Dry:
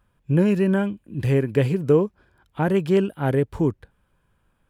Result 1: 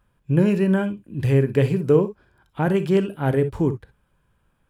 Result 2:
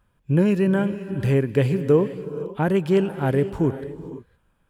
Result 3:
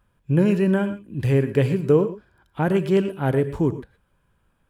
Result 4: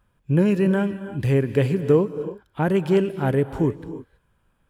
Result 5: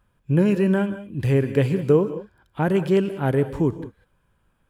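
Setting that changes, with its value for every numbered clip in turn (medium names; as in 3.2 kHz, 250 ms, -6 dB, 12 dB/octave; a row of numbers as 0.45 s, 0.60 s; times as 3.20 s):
gated-style reverb, gate: 80 ms, 540 ms, 140 ms, 350 ms, 220 ms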